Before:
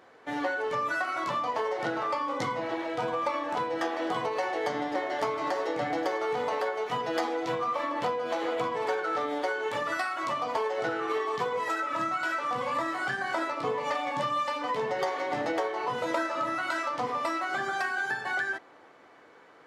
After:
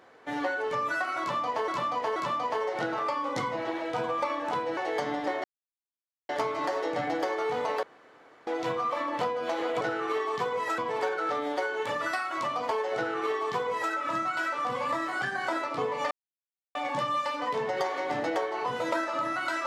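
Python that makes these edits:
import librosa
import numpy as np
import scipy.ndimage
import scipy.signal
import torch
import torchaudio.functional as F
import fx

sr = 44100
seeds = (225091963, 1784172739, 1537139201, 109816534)

y = fx.edit(x, sr, fx.repeat(start_s=1.2, length_s=0.48, count=3),
    fx.cut(start_s=3.81, length_s=0.64),
    fx.insert_silence(at_s=5.12, length_s=0.85),
    fx.room_tone_fill(start_s=6.66, length_s=0.64),
    fx.duplicate(start_s=10.81, length_s=0.97, to_s=8.64),
    fx.insert_silence(at_s=13.97, length_s=0.64), tone=tone)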